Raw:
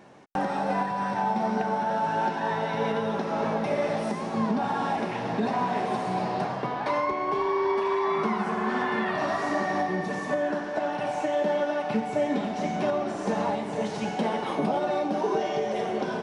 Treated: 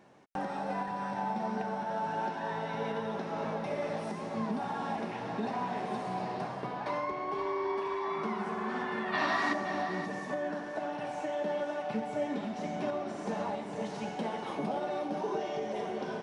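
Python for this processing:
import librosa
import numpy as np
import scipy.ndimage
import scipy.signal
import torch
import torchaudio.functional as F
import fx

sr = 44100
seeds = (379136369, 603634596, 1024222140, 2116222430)

y = fx.graphic_eq(x, sr, hz=(125, 250, 500, 1000, 2000, 4000), db=(-3, 7, -4, 6, 8, 11), at=(9.12, 9.52), fade=0.02)
y = y + 10.0 ** (-10.5 / 20.0) * np.pad(y, (int(524 * sr / 1000.0), 0))[:len(y)]
y = y * librosa.db_to_amplitude(-8.0)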